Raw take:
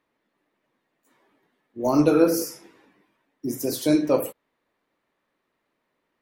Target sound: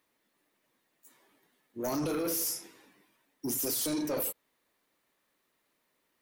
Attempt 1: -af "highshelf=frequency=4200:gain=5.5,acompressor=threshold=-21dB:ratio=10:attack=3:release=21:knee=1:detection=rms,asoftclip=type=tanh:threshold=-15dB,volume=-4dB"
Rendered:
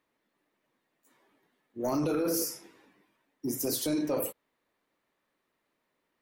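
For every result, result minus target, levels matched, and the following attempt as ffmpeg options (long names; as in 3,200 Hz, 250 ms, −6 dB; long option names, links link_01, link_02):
soft clipping: distortion −13 dB; 8,000 Hz band −3.0 dB
-af "highshelf=frequency=4200:gain=5.5,acompressor=threshold=-21dB:ratio=10:attack=3:release=21:knee=1:detection=rms,asoftclip=type=tanh:threshold=-23.5dB,volume=-4dB"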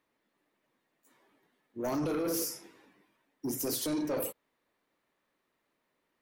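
8,000 Hz band −2.5 dB
-af "highshelf=frequency=4200:gain=17,acompressor=threshold=-21dB:ratio=10:attack=3:release=21:knee=1:detection=rms,asoftclip=type=tanh:threshold=-23.5dB,volume=-4dB"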